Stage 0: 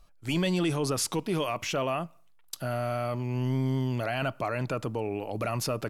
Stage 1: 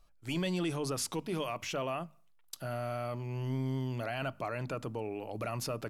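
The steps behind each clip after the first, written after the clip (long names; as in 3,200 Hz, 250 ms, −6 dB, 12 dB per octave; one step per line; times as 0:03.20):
mains-hum notches 50/100/150/200/250 Hz
level −6 dB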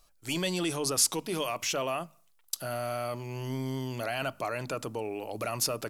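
bass and treble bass −6 dB, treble +9 dB
level +4 dB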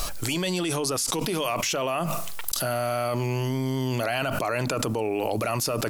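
envelope flattener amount 100%
level −5 dB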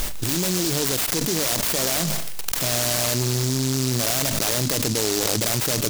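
short delay modulated by noise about 5,500 Hz, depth 0.31 ms
level +4 dB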